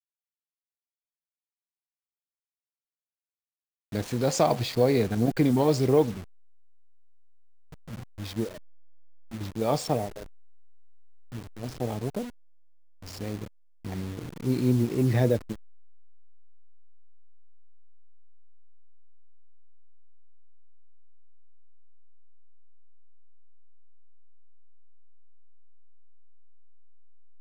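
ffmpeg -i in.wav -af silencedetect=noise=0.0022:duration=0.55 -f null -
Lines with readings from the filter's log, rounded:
silence_start: 0.00
silence_end: 3.92 | silence_duration: 3.92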